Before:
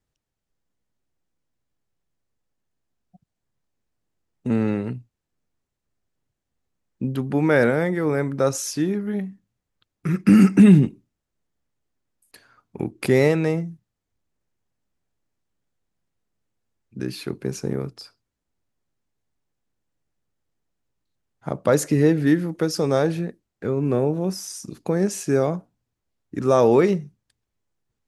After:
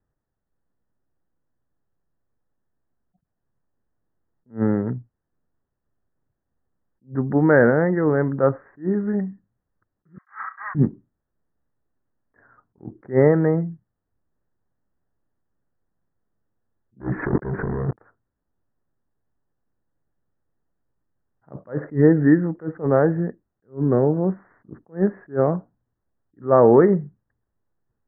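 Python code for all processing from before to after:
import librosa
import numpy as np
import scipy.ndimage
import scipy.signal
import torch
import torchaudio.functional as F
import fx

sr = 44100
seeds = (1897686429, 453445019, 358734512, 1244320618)

y = fx.chain(x, sr, fx.lower_of_two(delay_ms=3.1),
    fx.ellip_highpass(hz=1100.0, order=4, stop_db=70),
    fx.room_flutter(wall_m=5.6, rt60_s=0.2), at=(10.18, 10.75))
y = fx.chain(y, sr, fx.leveller(passes=5),
    fx.over_compress(threshold_db=-22.0, ratio=-0.5), at=(17.0, 17.99))
y = fx.wiener(y, sr, points=9)
y = scipy.signal.sosfilt(scipy.signal.butter(16, 1900.0, 'lowpass', fs=sr, output='sos'), y)
y = fx.attack_slew(y, sr, db_per_s=270.0)
y = y * 10.0 ** (3.0 / 20.0)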